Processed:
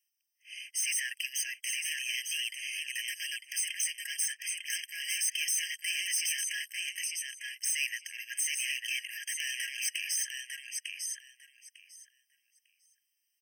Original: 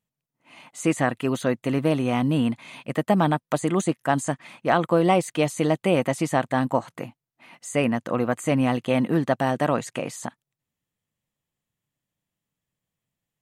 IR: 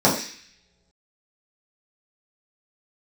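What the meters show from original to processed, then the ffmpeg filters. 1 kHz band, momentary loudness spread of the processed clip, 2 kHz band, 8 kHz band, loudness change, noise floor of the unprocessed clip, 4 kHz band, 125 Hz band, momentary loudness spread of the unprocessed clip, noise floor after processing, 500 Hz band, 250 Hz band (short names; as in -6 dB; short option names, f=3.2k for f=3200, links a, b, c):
under -40 dB, 8 LU, -2.5 dB, +7.5 dB, -8.5 dB, under -85 dBFS, +4.5 dB, under -40 dB, 11 LU, -80 dBFS, under -40 dB, under -40 dB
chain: -filter_complex "[0:a]highpass=f=1.1k:p=1,highshelf=f=2.8k:t=q:w=1.5:g=7.5,acrossover=split=2500[a][b];[a]asoftclip=type=tanh:threshold=-22.5dB[c];[c][b]amix=inputs=2:normalize=0,aecho=1:1:900|1800|2700:0.447|0.0715|0.0114,asoftclip=type=hard:threshold=-28.5dB,afftfilt=real='re*eq(mod(floor(b*sr/1024/1600),2),1)':imag='im*eq(mod(floor(b*sr/1024/1600),2),1)':win_size=1024:overlap=0.75,volume=4.5dB"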